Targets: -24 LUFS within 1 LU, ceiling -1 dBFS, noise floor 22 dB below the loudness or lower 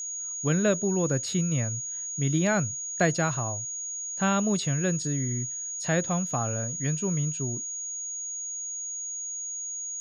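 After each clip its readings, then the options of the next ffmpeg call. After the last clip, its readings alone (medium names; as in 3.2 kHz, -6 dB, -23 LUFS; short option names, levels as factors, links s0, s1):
steady tone 6.7 kHz; tone level -32 dBFS; loudness -28.0 LUFS; peak level -11.5 dBFS; loudness target -24.0 LUFS
-> -af "bandreject=f=6700:w=30"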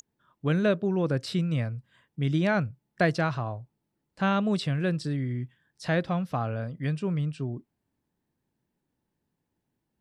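steady tone not found; loudness -28.5 LUFS; peak level -12.0 dBFS; loudness target -24.0 LUFS
-> -af "volume=1.68"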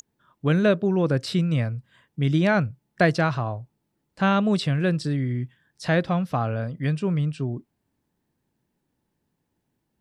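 loudness -24.0 LUFS; peak level -7.5 dBFS; noise floor -77 dBFS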